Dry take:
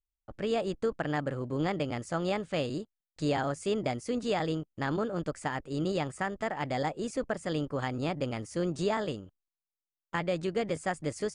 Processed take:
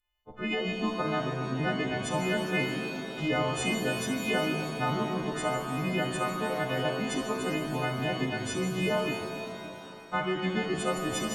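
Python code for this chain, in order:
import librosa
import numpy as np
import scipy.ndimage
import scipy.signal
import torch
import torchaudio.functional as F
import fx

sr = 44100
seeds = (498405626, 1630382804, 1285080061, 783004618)

y = fx.freq_snap(x, sr, grid_st=3)
y = fx.formant_shift(y, sr, semitones=-5)
y = fx.rev_shimmer(y, sr, seeds[0], rt60_s=3.0, semitones=7, shimmer_db=-8, drr_db=3.0)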